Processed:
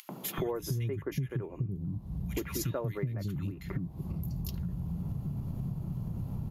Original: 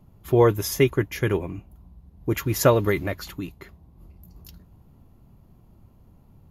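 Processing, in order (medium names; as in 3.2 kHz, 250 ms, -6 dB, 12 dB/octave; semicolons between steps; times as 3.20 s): upward compressor, threshold -28 dBFS; peaking EQ 150 Hz +14.5 dB 1.3 oct; three bands offset in time highs, mids, lows 90/380 ms, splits 280/2000 Hz; compression 8:1, threshold -37 dBFS, peak gain reduction 28.5 dB; trim +5 dB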